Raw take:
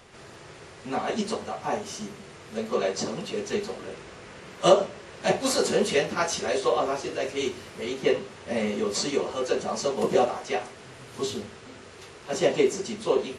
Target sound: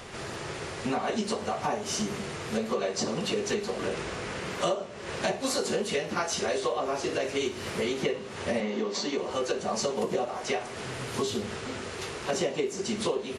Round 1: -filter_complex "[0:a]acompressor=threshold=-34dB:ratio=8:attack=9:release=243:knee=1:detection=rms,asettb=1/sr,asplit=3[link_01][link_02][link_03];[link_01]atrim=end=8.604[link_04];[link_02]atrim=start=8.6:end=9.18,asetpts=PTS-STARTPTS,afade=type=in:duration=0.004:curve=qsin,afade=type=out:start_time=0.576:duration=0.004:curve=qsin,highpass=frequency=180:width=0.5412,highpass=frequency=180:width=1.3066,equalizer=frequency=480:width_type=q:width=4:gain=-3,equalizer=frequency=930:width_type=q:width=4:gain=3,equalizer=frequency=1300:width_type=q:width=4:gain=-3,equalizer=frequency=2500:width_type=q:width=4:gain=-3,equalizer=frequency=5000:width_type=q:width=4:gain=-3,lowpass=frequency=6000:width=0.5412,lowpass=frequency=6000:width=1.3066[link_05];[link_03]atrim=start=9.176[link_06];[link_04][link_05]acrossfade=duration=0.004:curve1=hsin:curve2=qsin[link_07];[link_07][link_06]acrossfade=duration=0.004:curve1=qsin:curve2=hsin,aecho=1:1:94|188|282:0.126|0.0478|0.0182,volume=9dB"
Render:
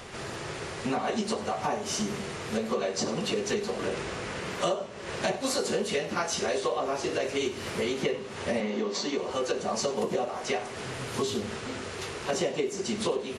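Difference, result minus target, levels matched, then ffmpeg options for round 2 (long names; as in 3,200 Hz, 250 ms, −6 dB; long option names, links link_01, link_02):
echo 39 ms late
-filter_complex "[0:a]acompressor=threshold=-34dB:ratio=8:attack=9:release=243:knee=1:detection=rms,asettb=1/sr,asplit=3[link_01][link_02][link_03];[link_01]atrim=end=8.604[link_04];[link_02]atrim=start=8.6:end=9.18,asetpts=PTS-STARTPTS,afade=type=in:duration=0.004:curve=qsin,afade=type=out:start_time=0.576:duration=0.004:curve=qsin,highpass=frequency=180:width=0.5412,highpass=frequency=180:width=1.3066,equalizer=frequency=480:width_type=q:width=4:gain=-3,equalizer=frequency=930:width_type=q:width=4:gain=3,equalizer=frequency=1300:width_type=q:width=4:gain=-3,equalizer=frequency=2500:width_type=q:width=4:gain=-3,equalizer=frequency=5000:width_type=q:width=4:gain=-3,lowpass=frequency=6000:width=0.5412,lowpass=frequency=6000:width=1.3066[link_05];[link_03]atrim=start=9.176[link_06];[link_04][link_05]acrossfade=duration=0.004:curve1=hsin:curve2=qsin[link_07];[link_07][link_06]acrossfade=duration=0.004:curve1=qsin:curve2=hsin,aecho=1:1:55|110|165:0.126|0.0478|0.0182,volume=9dB"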